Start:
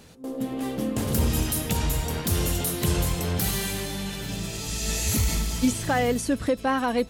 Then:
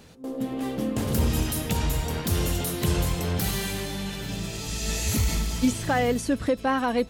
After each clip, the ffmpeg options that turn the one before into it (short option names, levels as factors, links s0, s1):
-af "equalizer=f=11000:t=o:w=1.4:g=-4"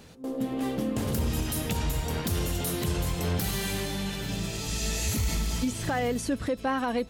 -af "alimiter=limit=0.112:level=0:latency=1:release=177"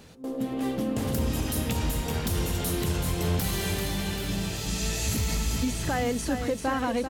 -af "aecho=1:1:391|782|1173|1564|1955|2346|2737:0.422|0.245|0.142|0.0823|0.0477|0.0277|0.0161"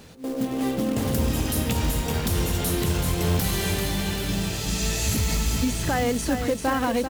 -af "acrusher=bits=4:mode=log:mix=0:aa=0.000001,volume=1.5"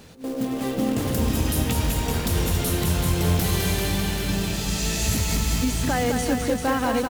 -af "aecho=1:1:208:0.531"